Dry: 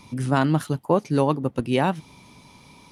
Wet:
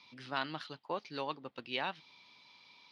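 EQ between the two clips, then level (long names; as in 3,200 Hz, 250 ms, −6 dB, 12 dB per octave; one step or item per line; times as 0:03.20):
resonant band-pass 4,600 Hz, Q 2.3
high-frequency loss of the air 350 metres
+9.0 dB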